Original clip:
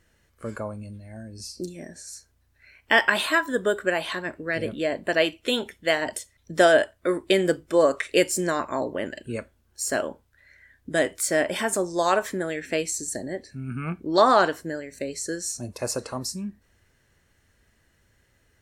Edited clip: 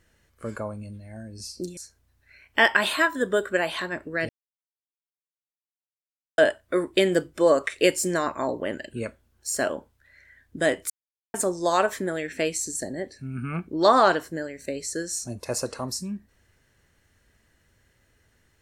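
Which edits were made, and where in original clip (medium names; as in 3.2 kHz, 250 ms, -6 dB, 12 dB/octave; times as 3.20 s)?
1.77–2.10 s: delete
4.62–6.71 s: mute
11.23–11.67 s: mute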